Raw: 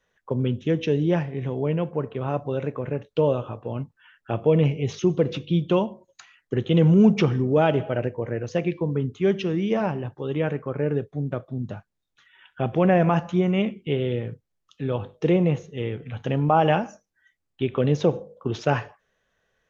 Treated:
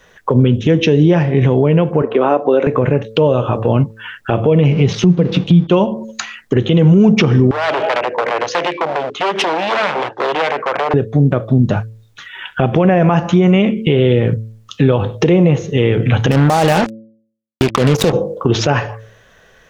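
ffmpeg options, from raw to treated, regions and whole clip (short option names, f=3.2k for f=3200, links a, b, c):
-filter_complex "[0:a]asettb=1/sr,asplit=3[a][b][c];[a]atrim=end=2.024[d];[b]atrim=start=2.02:end=2.67,asetpts=PTS-STARTPTS,afade=t=in:d=0.004:c=qsin,afade=t=out:st=0.646:d=0.004:c=qsin,highpass=f=260:w=0.5412,highpass=f=260:w=1.3066,highshelf=f=3k:g=-9.5,acompressor=mode=upward:threshold=-36dB:ratio=2.5:attack=3.2:release=140:knee=2.83:detection=peak[e];[c]atrim=start=2.666[f];[d][e]acrossfade=d=0.004:c1=hsin:c2=qsin[g];[g][f]acrossfade=d=0.004:c1=qsin:c2=hsin,asettb=1/sr,asplit=3[h][i][j];[h]atrim=end=4.724[k];[i]atrim=start=4.72:end=5.67,asetpts=PTS-STARTPTS,afade=t=in:d=0.004:c=qsin,afade=t=out:st=0.946:d=0.004:c=qsin,equalizer=f=180:w=5.6:g=14.5,aeval=exprs='sgn(val(0))*max(abs(val(0))-0.00501,0)':c=same,lowpass=f=5.9k:w=0.5412,lowpass=f=5.9k:w=1.3066[l];[j]atrim=start=5.666[m];[k][l]acrossfade=d=0.004:c1=hsin:c2=qsin[n];[n][m]acrossfade=d=0.004:c1=qsin:c2=hsin,asettb=1/sr,asplit=3[o][p][q];[o]atrim=end=7.514[r];[p]atrim=start=7.51:end=10.94,asetpts=PTS-STARTPTS,afade=t=in:d=0.004:c=qsin,afade=t=out:st=3.426:d=0.004:c=qsin,acompressor=threshold=-26dB:ratio=16:attack=3.2:release=140:knee=1:detection=peak,aeval=exprs='0.0299*(abs(mod(val(0)/0.0299+3,4)-2)-1)':c=same,highpass=520,lowpass=4.5k[s];[q]atrim=start=10.936[t];[r][s]acrossfade=d=0.004:c1=hsin:c2=qsin[u];[u][t]acrossfade=d=0.004:c1=qsin:c2=hsin,asettb=1/sr,asplit=3[v][w][x];[v]atrim=end=16.314[y];[w]atrim=start=16.31:end=18.13,asetpts=PTS-STARTPTS,afade=t=in:d=0.004:c=qsin,afade=t=out:st=1.816:d=0.004:c=qsin,acompressor=threshold=-24dB:ratio=2.5:attack=3.2:release=140:knee=1:detection=peak,acrusher=bits=4:mix=0:aa=0.5[z];[x]atrim=start=18.126[aa];[y][z]acrossfade=d=0.004:c1=hsin:c2=qsin[ab];[ab][aa]acrossfade=d=0.004:c1=qsin:c2=hsin,bandreject=f=110.9:t=h:w=4,bandreject=f=221.8:t=h:w=4,bandreject=f=332.7:t=h:w=4,bandreject=f=443.6:t=h:w=4,bandreject=f=554.5:t=h:w=4,acompressor=threshold=-31dB:ratio=4,alimiter=level_in=25dB:limit=-1dB:release=50:level=0:latency=1,volume=-1.5dB"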